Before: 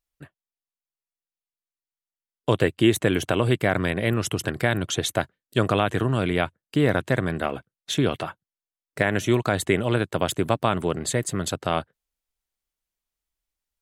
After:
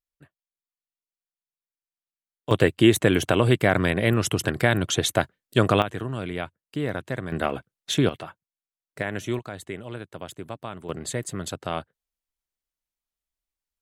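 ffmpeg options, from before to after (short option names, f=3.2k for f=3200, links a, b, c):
-af "asetnsamples=n=441:p=0,asendcmd='2.51 volume volume 2dB;5.82 volume volume -7.5dB;7.32 volume volume 1dB;8.09 volume volume -7dB;9.39 volume volume -13.5dB;10.89 volume volume -5dB',volume=-9dB"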